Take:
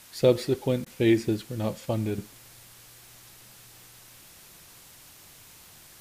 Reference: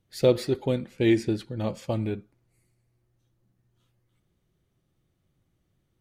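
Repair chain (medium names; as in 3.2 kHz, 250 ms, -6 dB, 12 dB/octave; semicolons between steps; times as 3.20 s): interpolate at 0.85 s, 11 ms; noise print and reduce 21 dB; trim 0 dB, from 2.18 s -10 dB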